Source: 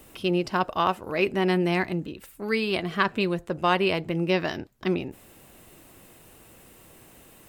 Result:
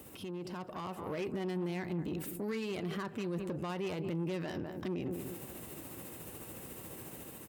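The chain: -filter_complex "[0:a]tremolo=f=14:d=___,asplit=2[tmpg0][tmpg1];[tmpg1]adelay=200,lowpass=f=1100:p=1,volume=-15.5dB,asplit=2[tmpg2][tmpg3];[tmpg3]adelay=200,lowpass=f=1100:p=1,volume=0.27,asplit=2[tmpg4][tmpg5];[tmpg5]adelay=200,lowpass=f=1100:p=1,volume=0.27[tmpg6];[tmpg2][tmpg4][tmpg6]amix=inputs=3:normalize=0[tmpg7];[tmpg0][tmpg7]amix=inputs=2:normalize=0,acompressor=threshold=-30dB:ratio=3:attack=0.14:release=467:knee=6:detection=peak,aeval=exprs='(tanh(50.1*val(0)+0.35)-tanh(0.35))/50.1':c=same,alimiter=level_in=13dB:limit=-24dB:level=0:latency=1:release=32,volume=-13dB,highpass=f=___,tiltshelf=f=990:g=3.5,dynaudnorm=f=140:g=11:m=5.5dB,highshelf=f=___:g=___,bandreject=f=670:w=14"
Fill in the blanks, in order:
0.33, 77, 8300, 8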